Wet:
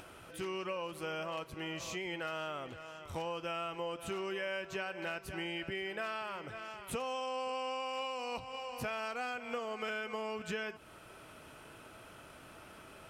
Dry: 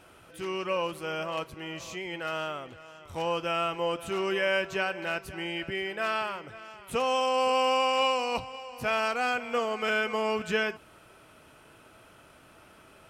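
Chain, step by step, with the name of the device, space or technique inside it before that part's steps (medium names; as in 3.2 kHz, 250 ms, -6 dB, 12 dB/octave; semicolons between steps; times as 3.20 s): 7.13–7.86 s: low-pass 10 kHz 12 dB/octave; upward and downward compression (upward compressor, threshold -49 dBFS; compression 6:1, threshold -36 dBFS, peak gain reduction 14 dB)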